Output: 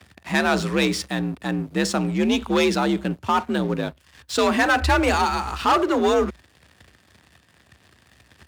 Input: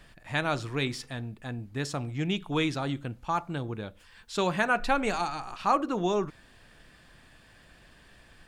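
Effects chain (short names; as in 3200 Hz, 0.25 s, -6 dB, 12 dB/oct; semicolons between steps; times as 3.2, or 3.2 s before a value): sample leveller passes 3; frequency shift +57 Hz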